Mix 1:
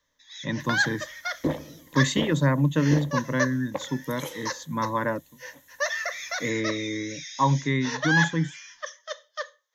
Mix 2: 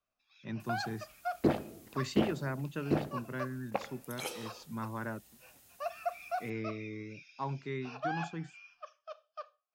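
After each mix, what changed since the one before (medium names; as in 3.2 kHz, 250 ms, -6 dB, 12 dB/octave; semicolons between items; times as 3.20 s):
speech -12.0 dB; first sound: add vowel filter a; master: remove rippled EQ curve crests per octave 1.1, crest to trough 12 dB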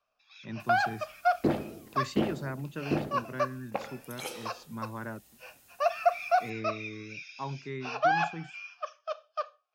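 first sound +11.0 dB; second sound: send +6.0 dB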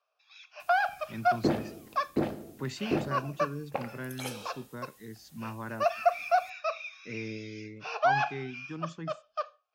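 speech: entry +0.65 s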